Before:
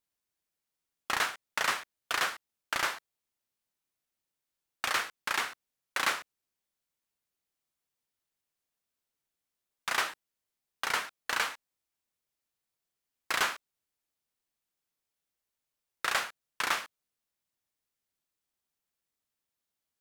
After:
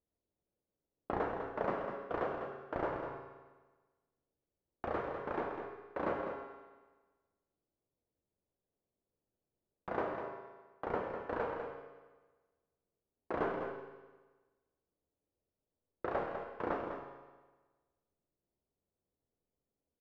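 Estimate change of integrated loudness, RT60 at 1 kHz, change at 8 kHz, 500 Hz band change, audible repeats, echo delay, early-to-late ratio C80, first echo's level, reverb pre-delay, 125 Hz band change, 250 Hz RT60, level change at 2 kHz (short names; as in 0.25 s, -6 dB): -7.5 dB, 1.3 s, under -35 dB, +8.0 dB, 1, 0.2 s, 3.5 dB, -8.0 dB, 7 ms, +8.5 dB, 1.3 s, -14.5 dB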